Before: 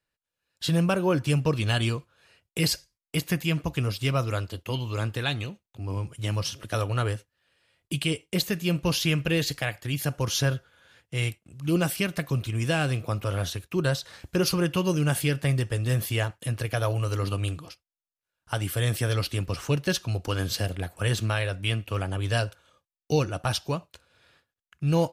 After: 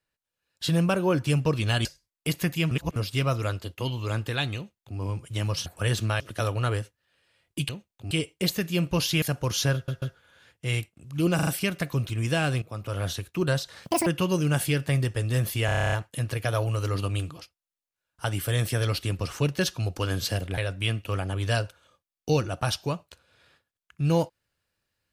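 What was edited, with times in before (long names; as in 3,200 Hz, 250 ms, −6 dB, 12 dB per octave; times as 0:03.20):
0:01.85–0:02.73: remove
0:03.59–0:03.84: reverse
0:05.44–0:05.86: duplicate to 0:08.03
0:09.14–0:09.99: remove
0:10.51: stutter 0.14 s, 3 plays
0:11.84: stutter 0.04 s, 4 plays
0:12.99–0:13.46: fade in, from −13.5 dB
0:14.22–0:14.62: play speed 186%
0:16.21: stutter 0.03 s, 10 plays
0:20.86–0:21.40: move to 0:06.54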